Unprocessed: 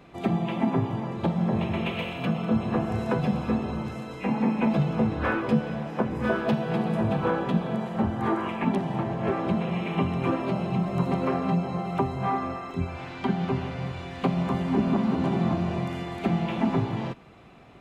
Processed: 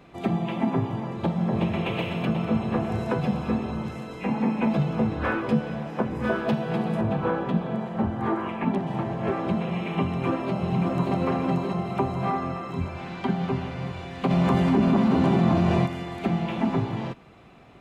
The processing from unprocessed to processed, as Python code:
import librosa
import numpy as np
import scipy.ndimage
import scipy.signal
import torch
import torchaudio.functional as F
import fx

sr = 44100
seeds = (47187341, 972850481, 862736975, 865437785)

y = fx.echo_throw(x, sr, start_s=1.16, length_s=0.69, ms=370, feedback_pct=70, wet_db=-4.5)
y = fx.high_shelf(y, sr, hz=4000.0, db=-8.5, at=(7.01, 8.87))
y = fx.echo_throw(y, sr, start_s=10.04, length_s=1.11, ms=580, feedback_pct=65, wet_db=-4.5)
y = fx.env_flatten(y, sr, amount_pct=70, at=(14.29, 15.85), fade=0.02)